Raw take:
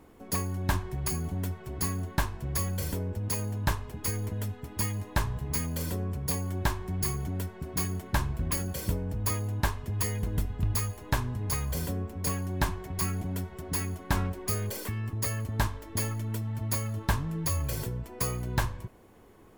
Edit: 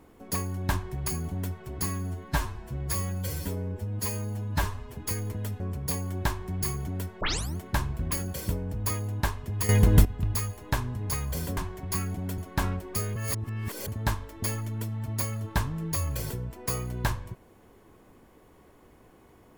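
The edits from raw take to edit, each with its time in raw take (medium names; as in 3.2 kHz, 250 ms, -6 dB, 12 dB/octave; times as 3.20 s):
1.86–3.92 s: stretch 1.5×
4.57–6.00 s: delete
7.61 s: tape start 0.36 s
10.09–10.45 s: gain +12 dB
11.97–12.64 s: delete
13.45–13.91 s: delete
14.69–15.41 s: reverse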